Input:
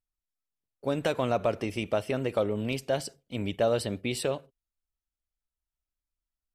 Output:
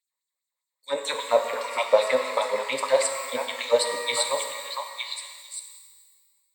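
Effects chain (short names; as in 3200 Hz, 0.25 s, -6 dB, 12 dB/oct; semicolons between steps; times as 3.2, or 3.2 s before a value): ripple EQ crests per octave 1, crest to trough 15 dB; LFO high-pass sine 5 Hz 570–7100 Hz; delay with a stepping band-pass 0.456 s, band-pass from 1100 Hz, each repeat 1.4 oct, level -1 dB; shimmer reverb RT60 1.6 s, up +12 st, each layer -8 dB, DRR 4.5 dB; gain +3 dB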